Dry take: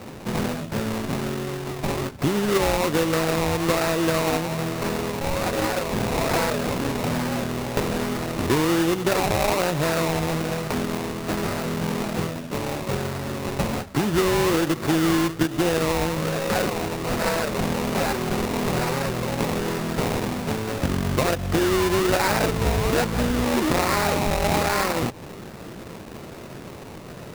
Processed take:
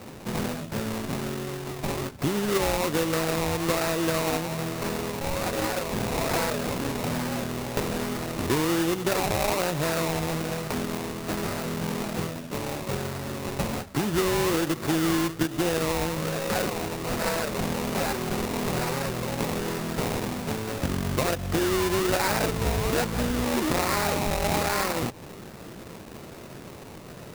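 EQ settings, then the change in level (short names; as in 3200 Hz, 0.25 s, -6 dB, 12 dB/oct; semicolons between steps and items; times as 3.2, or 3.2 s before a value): high shelf 5400 Hz +4 dB; -4.0 dB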